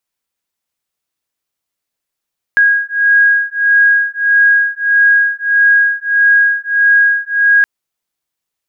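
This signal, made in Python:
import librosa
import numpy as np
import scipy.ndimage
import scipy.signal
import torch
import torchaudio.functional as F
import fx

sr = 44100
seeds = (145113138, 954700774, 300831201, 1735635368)

y = fx.two_tone_beats(sr, length_s=5.07, hz=1640.0, beat_hz=1.6, level_db=-11.0)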